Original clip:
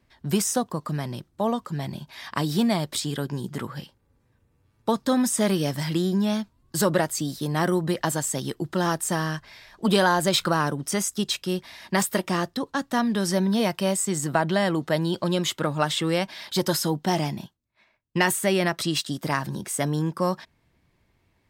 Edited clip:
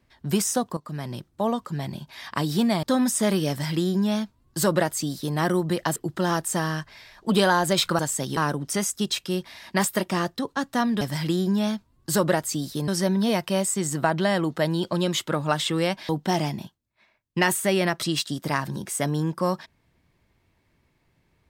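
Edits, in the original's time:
0.77–1.15 s: fade in, from -12.5 dB
2.83–5.01 s: delete
5.67–7.54 s: copy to 13.19 s
8.14–8.52 s: move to 10.55 s
16.40–16.88 s: delete

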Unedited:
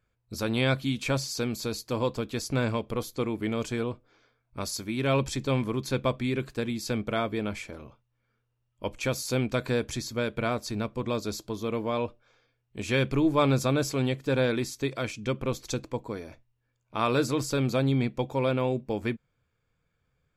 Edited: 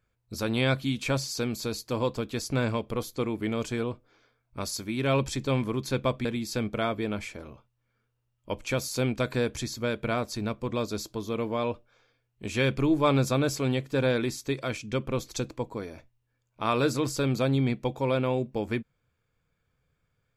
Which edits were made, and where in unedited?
6.25–6.59 s: delete

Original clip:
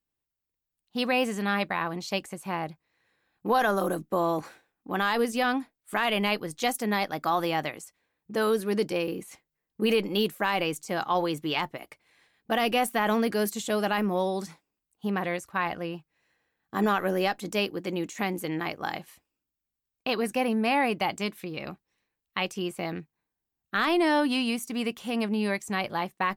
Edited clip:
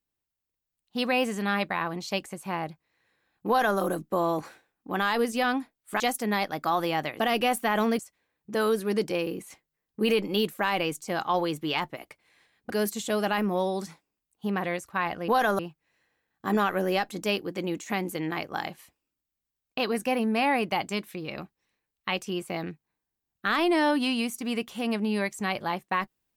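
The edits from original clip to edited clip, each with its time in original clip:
3.48–3.79 s: copy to 15.88 s
6.00–6.60 s: delete
12.51–13.30 s: move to 7.80 s

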